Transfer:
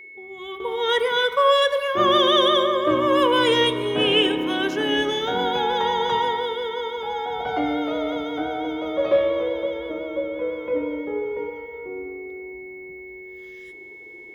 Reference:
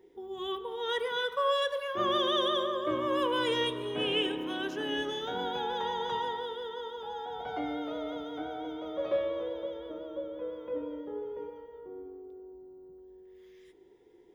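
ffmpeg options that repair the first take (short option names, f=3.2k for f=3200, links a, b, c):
-af "bandreject=f=2.2k:w=30,asetnsamples=n=441:p=0,asendcmd='0.6 volume volume -11dB',volume=0dB"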